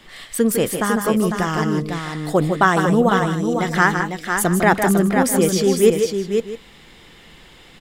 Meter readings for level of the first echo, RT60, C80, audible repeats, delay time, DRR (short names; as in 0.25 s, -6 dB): -8.0 dB, none, none, 3, 0.153 s, none